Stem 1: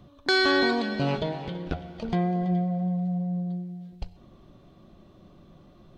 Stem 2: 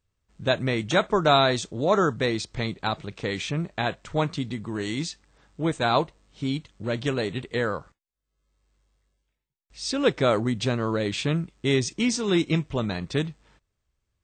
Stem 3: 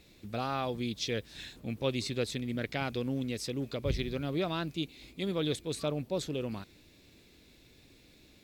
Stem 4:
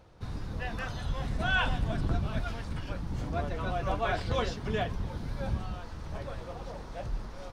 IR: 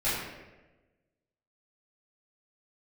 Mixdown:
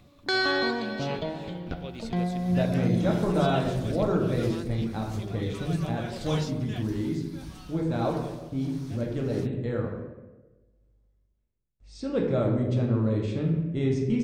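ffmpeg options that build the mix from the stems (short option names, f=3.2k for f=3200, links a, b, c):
-filter_complex "[0:a]volume=-4.5dB,asplit=2[a][b];[b]volume=-18dB[c];[1:a]tiltshelf=f=740:g=9.5,adelay=2100,volume=-12.5dB,asplit=2[d][e];[e]volume=-7.5dB[f];[2:a]acompressor=mode=upward:threshold=-51dB:ratio=2.5,volume=-9.5dB[g];[3:a]crystalizer=i=9:c=0,tremolo=f=1.6:d=0.58,adelay=1950,volume=-12dB[h];[4:a]atrim=start_sample=2205[i];[c][f]amix=inputs=2:normalize=0[j];[j][i]afir=irnorm=-1:irlink=0[k];[a][d][g][h][k]amix=inputs=5:normalize=0"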